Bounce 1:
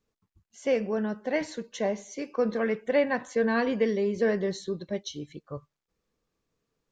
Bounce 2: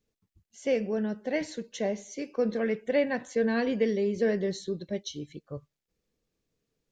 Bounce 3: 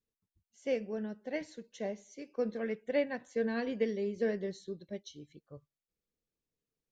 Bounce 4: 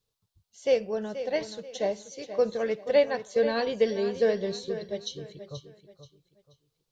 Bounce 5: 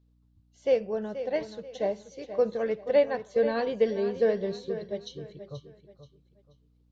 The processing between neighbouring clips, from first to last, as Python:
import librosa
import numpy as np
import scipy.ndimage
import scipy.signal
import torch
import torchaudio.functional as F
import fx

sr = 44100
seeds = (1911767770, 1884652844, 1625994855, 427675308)

y1 = fx.peak_eq(x, sr, hz=1100.0, db=-9.0, octaves=0.96)
y2 = fx.upward_expand(y1, sr, threshold_db=-36.0, expansion=1.5)
y2 = y2 * librosa.db_to_amplitude(-4.5)
y3 = fx.graphic_eq_10(y2, sr, hz=(125, 250, 500, 1000, 2000, 4000), db=(7, -11, 3, 4, -6, 8))
y3 = fx.echo_feedback(y3, sr, ms=481, feedback_pct=32, wet_db=-11.5)
y3 = y3 * librosa.db_to_amplitude(8.0)
y4 = fx.lowpass(y3, sr, hz=1900.0, slope=6)
y4 = fx.add_hum(y4, sr, base_hz=60, snr_db=35)